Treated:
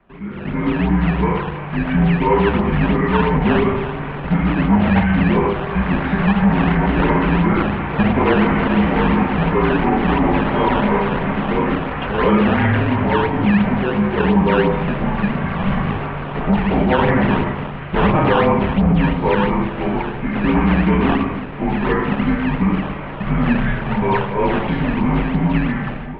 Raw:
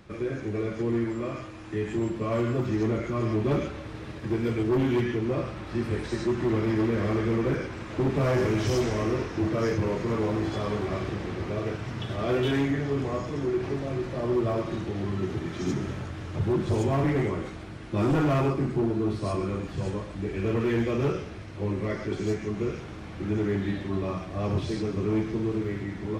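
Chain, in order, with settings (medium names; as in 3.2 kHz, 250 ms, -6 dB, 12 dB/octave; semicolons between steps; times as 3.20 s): bass shelf 320 Hz -8 dB; simulated room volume 460 m³, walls mixed, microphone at 1.1 m; peak limiter -20.5 dBFS, peak gain reduction 6 dB; level rider gain up to 14 dB; dynamic bell 1 kHz, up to +5 dB, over -36 dBFS, Q 1.6; decimation with a swept rate 11×, swing 160% 2.9 Hz; mistuned SSB -170 Hz 200–3000 Hz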